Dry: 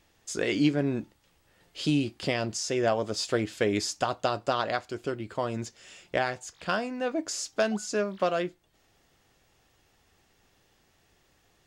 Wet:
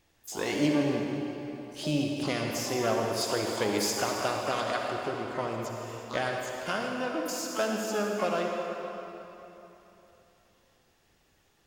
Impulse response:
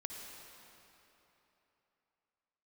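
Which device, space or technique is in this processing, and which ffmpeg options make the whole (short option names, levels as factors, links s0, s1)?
shimmer-style reverb: -filter_complex "[0:a]asettb=1/sr,asplit=3[s0][s1][s2];[s0]atrim=end=3.214[s3];[s1]atrim=start=3.21:end=3.97,asetpts=PTS-STARTPTS,afade=t=in:d=0.004:c=qsin,afade=t=out:st=0.756:d=0.004:c=qsin,bass=f=250:g=-3,treble=f=4000:g=6[s4];[s2]atrim=start=3.966[s5];[s3][s4]acrossfade=d=0.004:c1=hsin:c2=qsin[s6];[s6][s5]acrossfade=d=0.004:c1=qsin:c2=hsin,asplit=2[s7][s8];[s8]asetrate=88200,aresample=44100,atempo=0.5,volume=0.355[s9];[s7][s9]amix=inputs=2:normalize=0[s10];[1:a]atrim=start_sample=2205[s11];[s10][s11]afir=irnorm=-1:irlink=0"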